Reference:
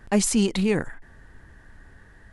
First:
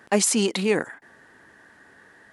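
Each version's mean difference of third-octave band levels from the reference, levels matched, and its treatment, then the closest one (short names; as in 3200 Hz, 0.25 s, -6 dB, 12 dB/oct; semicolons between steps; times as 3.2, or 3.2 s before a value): 3.5 dB: HPF 290 Hz 12 dB/oct; gain +3.5 dB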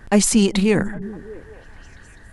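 2.0 dB: delay with a stepping band-pass 0.202 s, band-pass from 150 Hz, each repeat 0.7 oct, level -11 dB; gain +5.5 dB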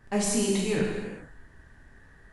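5.0 dB: non-linear reverb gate 0.5 s falling, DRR -4 dB; gain -8.5 dB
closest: second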